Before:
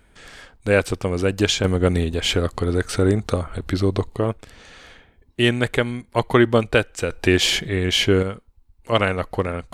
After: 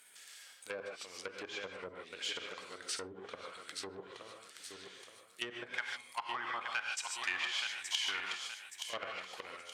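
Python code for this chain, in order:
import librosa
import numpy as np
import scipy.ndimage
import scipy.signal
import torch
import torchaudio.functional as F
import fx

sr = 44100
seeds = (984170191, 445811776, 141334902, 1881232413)

y = fx.law_mismatch(x, sr, coded='mu')
y = fx.level_steps(y, sr, step_db=17)
y = fx.low_shelf_res(y, sr, hz=640.0, db=-9.5, q=3.0, at=(5.73, 8.31))
y = fx.echo_feedback(y, sr, ms=873, feedback_pct=39, wet_db=-10.5)
y = 10.0 ** (-16.0 / 20.0) * np.tanh(y / 10.0 ** (-16.0 / 20.0))
y = fx.rev_gated(y, sr, seeds[0], gate_ms=170, shape='rising', drr_db=2.5)
y = fx.env_lowpass_down(y, sr, base_hz=340.0, full_db=-16.0)
y = fx.highpass(y, sr, hz=170.0, slope=6)
y = np.diff(y, prepend=0.0)
y = y * 10.0 ** (4.0 / 20.0)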